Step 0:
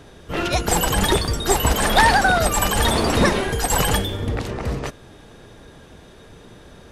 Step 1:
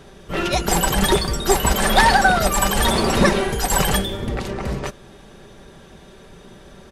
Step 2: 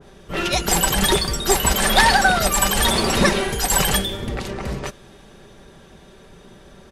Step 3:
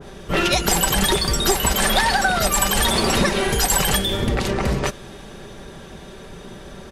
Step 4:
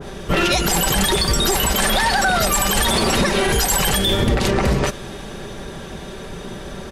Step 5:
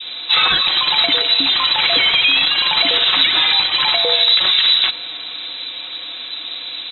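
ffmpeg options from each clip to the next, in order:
ffmpeg -i in.wav -af "aecho=1:1:5.2:0.48" out.wav
ffmpeg -i in.wav -af "adynamicequalizer=threshold=0.0251:dfrequency=1700:dqfactor=0.7:tfrequency=1700:tqfactor=0.7:attack=5:release=100:ratio=0.375:range=2.5:mode=boostabove:tftype=highshelf,volume=-2dB" out.wav
ffmpeg -i in.wav -af "acompressor=threshold=-23dB:ratio=6,volume=7.5dB" out.wav
ffmpeg -i in.wav -af "alimiter=limit=-14.5dB:level=0:latency=1:release=48,volume=6dB" out.wav
ffmpeg -i in.wav -af "lowpass=frequency=3400:width_type=q:width=0.5098,lowpass=frequency=3400:width_type=q:width=0.6013,lowpass=frequency=3400:width_type=q:width=0.9,lowpass=frequency=3400:width_type=q:width=2.563,afreqshift=-4000,volume=3.5dB" out.wav

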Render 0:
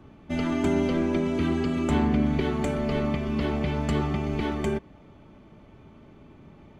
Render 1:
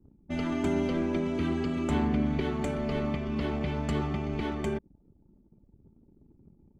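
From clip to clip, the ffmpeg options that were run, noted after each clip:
ffmpeg -i in.wav -af "anlmdn=0.1,volume=-4dB" out.wav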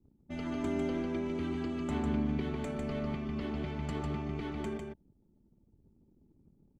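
ffmpeg -i in.wav -af "aecho=1:1:150:0.596,volume=-7.5dB" out.wav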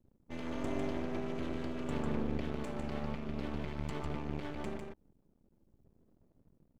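ffmpeg -i in.wav -af "aeval=exprs='max(val(0),0)':channel_layout=same,volume=1dB" out.wav

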